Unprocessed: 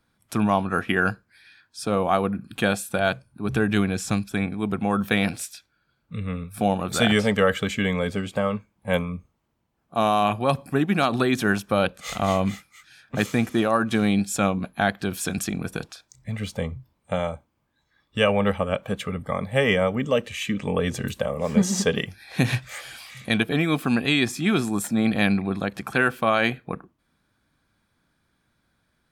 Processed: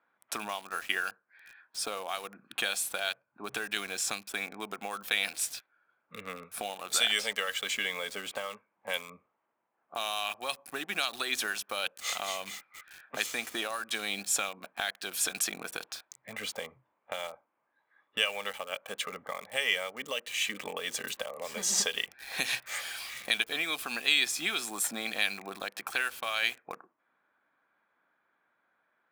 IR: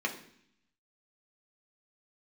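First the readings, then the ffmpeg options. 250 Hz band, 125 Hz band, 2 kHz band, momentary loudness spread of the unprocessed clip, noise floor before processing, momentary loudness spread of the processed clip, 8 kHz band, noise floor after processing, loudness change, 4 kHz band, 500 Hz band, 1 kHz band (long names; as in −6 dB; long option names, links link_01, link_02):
−24.0 dB, −30.5 dB, −5.0 dB, 12 LU, −72 dBFS, 13 LU, +1.5 dB, −79 dBFS, −8.0 dB, 0.0 dB, −16.0 dB, −12.0 dB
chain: -filter_complex "[0:a]highpass=610,acrossover=split=2400[link_01][link_02];[link_01]acompressor=threshold=-38dB:ratio=6[link_03];[link_02]acrusher=bits=7:mix=0:aa=0.000001[link_04];[link_03][link_04]amix=inputs=2:normalize=0,volume=1.5dB"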